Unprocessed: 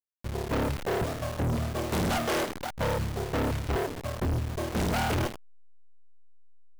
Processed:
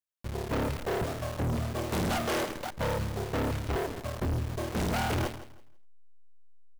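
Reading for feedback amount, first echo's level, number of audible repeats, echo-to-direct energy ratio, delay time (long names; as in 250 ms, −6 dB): 24%, −15.0 dB, 2, −14.5 dB, 164 ms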